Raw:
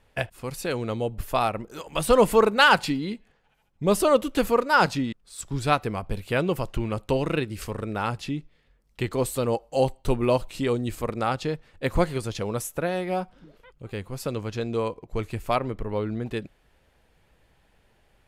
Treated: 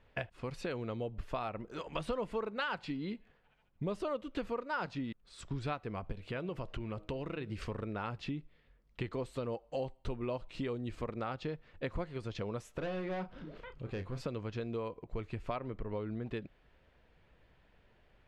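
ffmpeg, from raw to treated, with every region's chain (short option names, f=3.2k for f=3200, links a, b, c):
-filter_complex "[0:a]asettb=1/sr,asplit=3[a][b][c];[a]atrim=end=6.124[d];[b]atrim=start=6.12:end=7.52,asetpts=PTS-STARTPTS,afade=t=in:d=0.004:c=qsin,afade=t=out:st=1.396:d=0.004:c=qsin,acompressor=threshold=-33dB:ratio=2:attack=3.2:release=140:knee=1:detection=peak,bandreject=f=157.2:t=h:w=4,bandreject=f=314.4:t=h:w=4,bandreject=f=471.6:t=h:w=4,bandreject=f=628.8:t=h:w=4[e];[c]atrim=start=7.516[f];[d][e]acrossfade=d=0.004:c1=hsin:c2=qsin[g];[g][f]acrossfade=d=0.004:c1=qsin:c2=hsin,asettb=1/sr,asplit=3[h][i][j];[h]atrim=end=12.784[k];[i]atrim=start=12.78:end=14.25,asetpts=PTS-STARTPTS,afade=t=in:d=0.004:c=qsin,afade=t=out:st=1.466:d=0.004:c=qsin,acompressor=mode=upward:threshold=-35dB:ratio=2.5:attack=3.2:release=140:knee=2.83:detection=peak,asoftclip=type=hard:threshold=-28.5dB,asplit=2[l][m];[m]adelay=32,volume=-10dB[n];[l][n]amix=inputs=2:normalize=0,atrim=end_sample=64827[o];[j]atrim=start=14.246[p];[k][o]acrossfade=d=0.004:c1=hsin:c2=qsin[q];[q][p]acrossfade=d=0.004:c1=qsin:c2=hsin,lowpass=3.6k,bandreject=f=820:w=15,acompressor=threshold=-32dB:ratio=5,volume=-3dB"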